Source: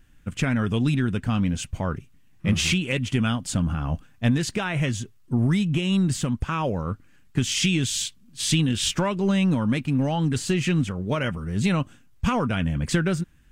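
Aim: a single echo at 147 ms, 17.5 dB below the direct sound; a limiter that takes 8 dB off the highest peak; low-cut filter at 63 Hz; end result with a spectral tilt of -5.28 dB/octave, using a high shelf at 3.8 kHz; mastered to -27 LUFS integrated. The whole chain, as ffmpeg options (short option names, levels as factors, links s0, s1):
-af "highpass=63,highshelf=f=3800:g=-3.5,alimiter=limit=0.15:level=0:latency=1,aecho=1:1:147:0.133,volume=0.944"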